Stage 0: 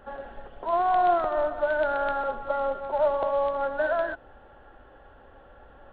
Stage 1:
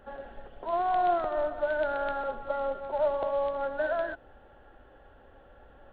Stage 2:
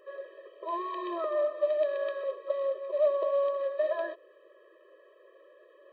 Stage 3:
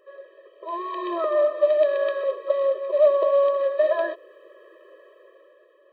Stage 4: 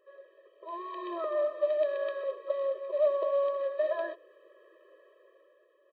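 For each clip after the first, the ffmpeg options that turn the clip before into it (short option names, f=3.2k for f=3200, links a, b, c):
-af "equalizer=f=1.1k:t=o:w=0.9:g=-4,volume=-2.5dB"
-af "afftfilt=real='re*eq(mod(floor(b*sr/1024/330),2),1)':imag='im*eq(mod(floor(b*sr/1024/330),2),1)':win_size=1024:overlap=0.75,volume=2dB"
-af "dynaudnorm=f=260:g=7:m=10dB,volume=-1.5dB"
-filter_complex "[0:a]asplit=2[a][b];[b]adelay=90,highpass=300,lowpass=3.4k,asoftclip=type=hard:threshold=-18dB,volume=-26dB[c];[a][c]amix=inputs=2:normalize=0,volume=-9dB"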